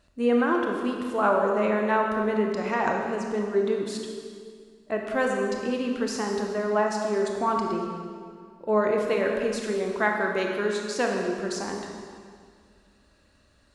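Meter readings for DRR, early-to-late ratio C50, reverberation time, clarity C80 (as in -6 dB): 1.0 dB, 2.5 dB, 2.1 s, 3.5 dB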